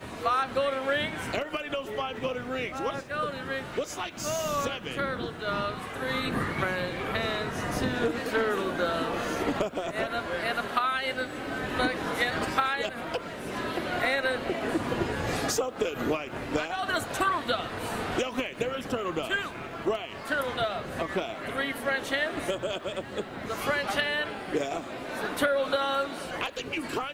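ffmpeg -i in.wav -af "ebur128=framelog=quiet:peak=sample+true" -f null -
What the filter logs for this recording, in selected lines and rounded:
Integrated loudness:
  I:         -29.9 LUFS
  Threshold: -39.9 LUFS
Loudness range:
  LRA:         2.6 LU
  Threshold: -50.0 LUFS
  LRA low:   -31.5 LUFS
  LRA high:  -28.9 LUFS
Sample peak:
  Peak:       -9.7 dBFS
True peak:
  Peak:       -9.7 dBFS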